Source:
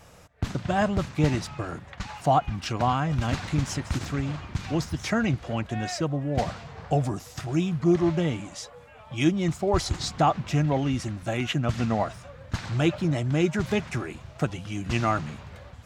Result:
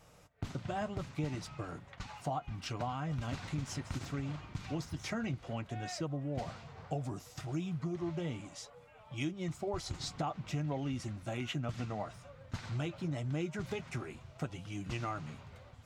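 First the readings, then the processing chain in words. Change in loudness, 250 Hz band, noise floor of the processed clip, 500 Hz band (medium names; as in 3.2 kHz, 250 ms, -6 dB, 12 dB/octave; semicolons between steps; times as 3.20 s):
-12.5 dB, -13.0 dB, -58 dBFS, -13.0 dB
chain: band-stop 1.7 kHz, Q 17; compression, threshold -24 dBFS, peak gain reduction 8.5 dB; flange 0.67 Hz, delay 6.4 ms, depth 1.7 ms, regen -55%; trim -5 dB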